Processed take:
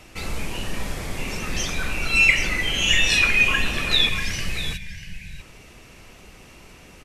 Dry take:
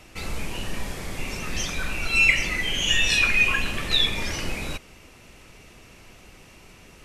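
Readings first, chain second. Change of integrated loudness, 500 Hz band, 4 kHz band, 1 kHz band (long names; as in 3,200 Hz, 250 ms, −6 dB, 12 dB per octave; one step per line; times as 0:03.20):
+2.0 dB, +2.0 dB, +2.0 dB, +2.0 dB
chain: gain on a spectral selection 0:04.09–0:05.39, 200–1,500 Hz −21 dB
slap from a distant wall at 110 metres, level −7 dB
level +2 dB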